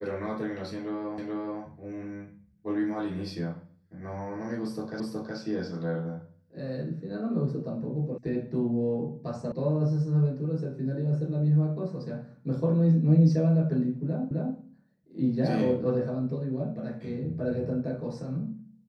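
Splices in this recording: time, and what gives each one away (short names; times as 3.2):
1.18 repeat of the last 0.43 s
5 repeat of the last 0.37 s
8.18 sound cut off
9.52 sound cut off
14.31 repeat of the last 0.26 s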